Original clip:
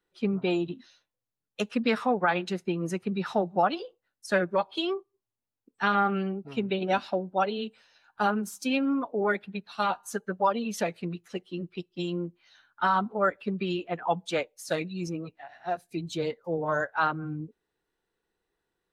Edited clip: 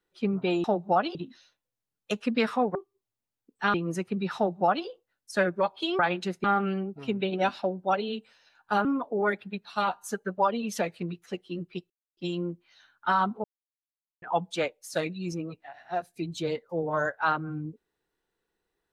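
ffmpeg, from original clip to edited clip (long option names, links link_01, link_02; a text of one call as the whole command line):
ffmpeg -i in.wav -filter_complex "[0:a]asplit=11[link_01][link_02][link_03][link_04][link_05][link_06][link_07][link_08][link_09][link_10][link_11];[link_01]atrim=end=0.642[link_12];[link_02]atrim=start=3.308:end=3.822[link_13];[link_03]atrim=start=0.638:end=2.242[link_14];[link_04]atrim=start=4.938:end=5.932[link_15];[link_05]atrim=start=2.688:end=4.942[link_16];[link_06]atrim=start=2.238:end=2.692[link_17];[link_07]atrim=start=5.928:end=8.342[link_18];[link_08]atrim=start=8.868:end=11.92,asetpts=PTS-STARTPTS,afade=type=out:start_time=3.048:duration=0.004:curve=hsin,apad=pad_dur=0.27[link_19];[link_09]atrim=start=11.92:end=13.19,asetpts=PTS-STARTPTS,afade=type=in:duration=0.004:curve=hsin,afade=type=out:start_time=1.266:duration=0.004:curve=hsin[link_20];[link_10]atrim=start=13.19:end=13.97,asetpts=PTS-STARTPTS,volume=0[link_21];[link_11]atrim=start=13.97,asetpts=PTS-STARTPTS,afade=type=in:duration=0.004:curve=hsin[link_22];[link_12][link_13]acrossfade=duration=0.004:curve1=hsin:curve2=hsin[link_23];[link_23][link_14]acrossfade=duration=0.004:curve1=hsin:curve2=hsin[link_24];[link_24][link_15]acrossfade=duration=0.004:curve1=hsin:curve2=hsin[link_25];[link_25][link_16]acrossfade=duration=0.004:curve1=hsin:curve2=hsin[link_26];[link_26][link_17]acrossfade=duration=0.004:curve1=hsin:curve2=hsin[link_27];[link_27][link_18]acrossfade=duration=0.004:curve1=hsin:curve2=hsin[link_28];[link_19][link_20][link_21][link_22]concat=n=4:v=0:a=1[link_29];[link_28][link_29]acrossfade=duration=0.004:curve1=hsin:curve2=hsin" out.wav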